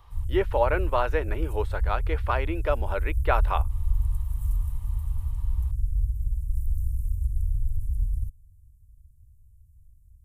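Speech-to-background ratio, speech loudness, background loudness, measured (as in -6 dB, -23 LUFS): 1.5 dB, -29.0 LUFS, -30.5 LUFS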